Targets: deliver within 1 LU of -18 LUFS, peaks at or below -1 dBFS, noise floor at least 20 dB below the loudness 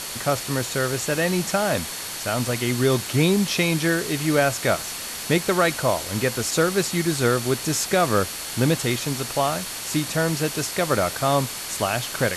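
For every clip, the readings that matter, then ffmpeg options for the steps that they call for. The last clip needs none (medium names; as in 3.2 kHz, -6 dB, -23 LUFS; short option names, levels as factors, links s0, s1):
steady tone 4.4 kHz; tone level -41 dBFS; noise floor -33 dBFS; noise floor target -43 dBFS; loudness -22.5 LUFS; peak level -8.0 dBFS; loudness target -18.0 LUFS
-> -af "bandreject=f=4400:w=30"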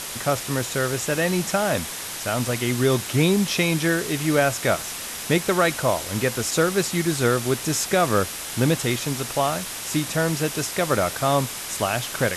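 steady tone not found; noise floor -33 dBFS; noise floor target -43 dBFS
-> -af "afftdn=nr=10:nf=-33"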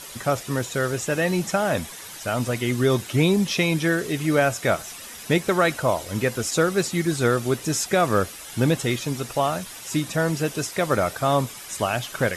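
noise floor -39 dBFS; noise floor target -44 dBFS
-> -af "afftdn=nr=6:nf=-39"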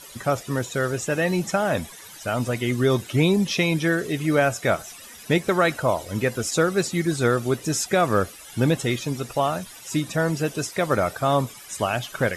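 noise floor -43 dBFS; noise floor target -44 dBFS
-> -af "afftdn=nr=6:nf=-43"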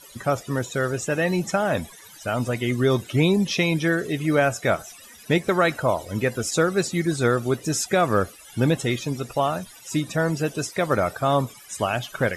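noise floor -46 dBFS; loudness -23.5 LUFS; peak level -9.0 dBFS; loudness target -18.0 LUFS
-> -af "volume=1.88"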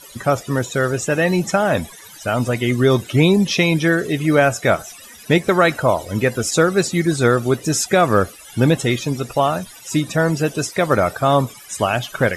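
loudness -18.0 LUFS; peak level -3.5 dBFS; noise floor -41 dBFS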